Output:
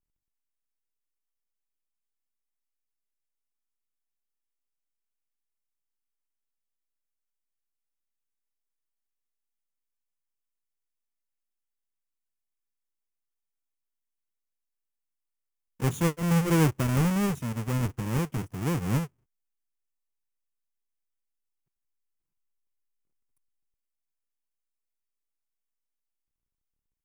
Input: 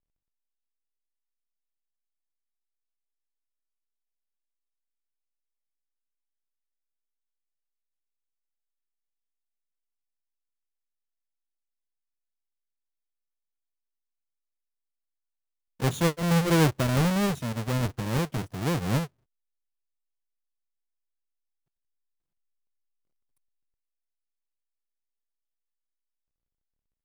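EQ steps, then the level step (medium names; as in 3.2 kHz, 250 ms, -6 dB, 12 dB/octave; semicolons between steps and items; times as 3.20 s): fifteen-band graphic EQ 630 Hz -7 dB, 1.6 kHz -3 dB, 4 kHz -10 dB; 0.0 dB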